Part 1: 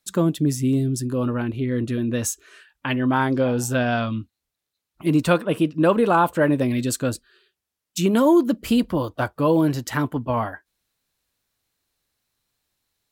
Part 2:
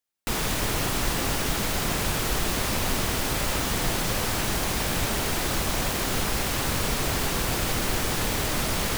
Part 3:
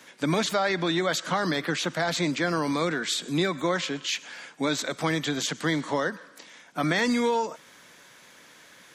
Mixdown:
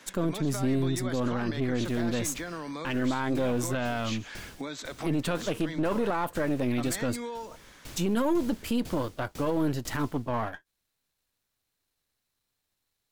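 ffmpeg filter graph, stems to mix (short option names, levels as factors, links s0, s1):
-filter_complex "[0:a]aeval=exprs='if(lt(val(0),0),0.447*val(0),val(0))':c=same,volume=0.75,asplit=2[s0][s1];[1:a]acrossover=split=490|3000[s2][s3][s4];[s3]acompressor=threshold=0.00708:ratio=2.5[s5];[s2][s5][s4]amix=inputs=3:normalize=0,aeval=exprs='val(0)*pow(10,-27*if(lt(mod(2*n/s,1),2*abs(2)/1000),1-mod(2*n/s,1)/(2*abs(2)/1000),(mod(2*n/s,1)-2*abs(2)/1000)/(1-2*abs(2)/1000))/20)':c=same,adelay=1350,volume=0.266[s6];[2:a]volume=0.841[s7];[s1]apad=whole_len=394628[s8];[s7][s8]sidechaincompress=threshold=0.0355:ratio=8:attack=16:release=266[s9];[s6][s9]amix=inputs=2:normalize=0,highshelf=f=10000:g=-6,acompressor=threshold=0.0178:ratio=5,volume=1[s10];[s0][s10]amix=inputs=2:normalize=0,alimiter=limit=0.119:level=0:latency=1:release=33"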